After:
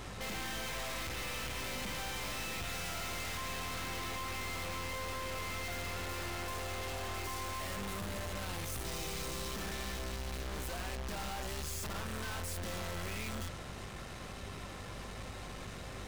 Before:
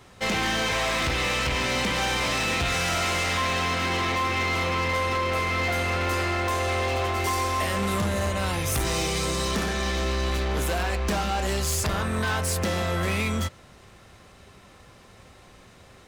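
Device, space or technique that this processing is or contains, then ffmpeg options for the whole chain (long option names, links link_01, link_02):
valve amplifier with mains hum: -af "aeval=exprs='(tanh(251*val(0)+0.4)-tanh(0.4))/251':channel_layout=same,aeval=exprs='val(0)+0.00141*(sin(2*PI*50*n/s)+sin(2*PI*2*50*n/s)/2+sin(2*PI*3*50*n/s)/3+sin(2*PI*4*50*n/s)/4+sin(2*PI*5*50*n/s)/5)':channel_layout=same,volume=8dB"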